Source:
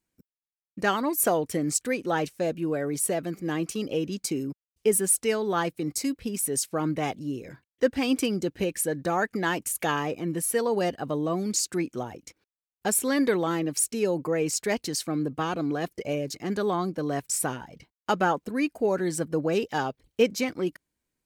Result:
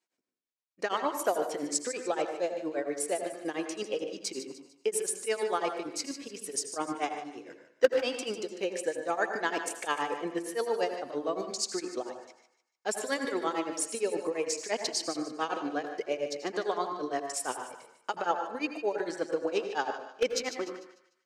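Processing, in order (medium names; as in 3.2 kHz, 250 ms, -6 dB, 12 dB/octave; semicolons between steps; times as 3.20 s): Chebyshev band-pass 470–6200 Hz, order 2; in parallel at +3 dB: level held to a coarse grid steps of 18 dB; on the sum: wavefolder -8 dBFS; tremolo triangle 8.7 Hz, depth 100%; thinning echo 149 ms, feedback 39%, high-pass 1.1 kHz, level -10.5 dB; on a send at -6.5 dB: reverberation RT60 0.60 s, pre-delay 76 ms; on the sum: trim -2.5 dB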